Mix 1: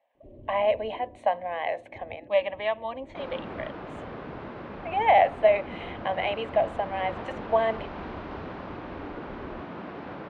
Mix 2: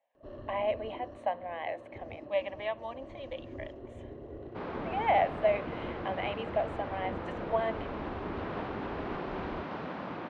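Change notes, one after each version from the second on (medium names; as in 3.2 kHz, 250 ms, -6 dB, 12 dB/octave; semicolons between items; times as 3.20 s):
speech -7.0 dB; first sound: remove Gaussian low-pass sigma 15 samples; second sound: entry +1.40 s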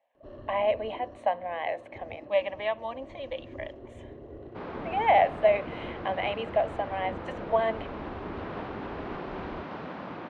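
speech +5.0 dB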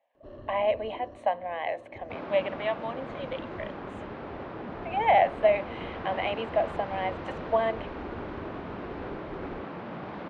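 second sound: entry -2.45 s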